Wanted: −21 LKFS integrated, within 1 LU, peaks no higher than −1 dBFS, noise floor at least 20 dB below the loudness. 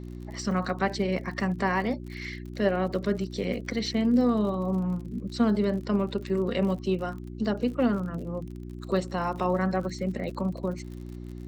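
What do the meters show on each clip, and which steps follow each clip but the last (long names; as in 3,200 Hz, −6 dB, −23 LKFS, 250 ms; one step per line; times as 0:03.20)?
crackle rate 51 per second; mains hum 60 Hz; hum harmonics up to 360 Hz; level of the hum −37 dBFS; integrated loudness −28.5 LKFS; sample peak −12.5 dBFS; target loudness −21.0 LKFS
→ click removal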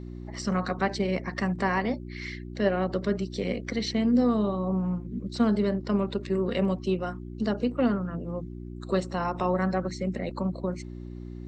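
crackle rate 0.087 per second; mains hum 60 Hz; hum harmonics up to 360 Hz; level of the hum −37 dBFS
→ hum removal 60 Hz, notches 6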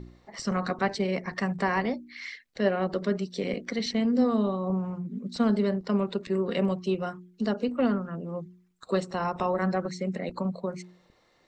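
mains hum none found; integrated loudness −29.0 LKFS; sample peak −12.5 dBFS; target loudness −21.0 LKFS
→ level +8 dB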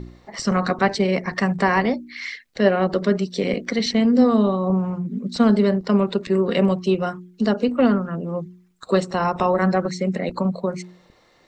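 integrated loudness −21.0 LKFS; sample peak −4.5 dBFS; background noise floor −56 dBFS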